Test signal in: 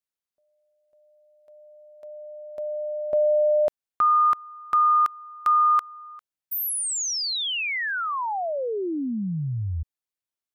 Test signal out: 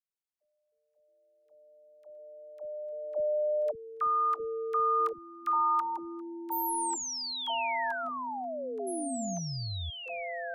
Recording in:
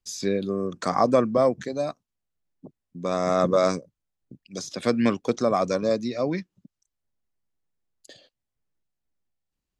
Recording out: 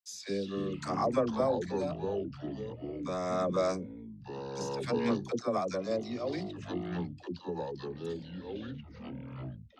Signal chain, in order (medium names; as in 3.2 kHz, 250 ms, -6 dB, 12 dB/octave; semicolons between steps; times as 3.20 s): phase dispersion lows, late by 74 ms, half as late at 500 Hz; ever faster or slower copies 173 ms, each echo -5 st, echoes 3, each echo -6 dB; trim -9 dB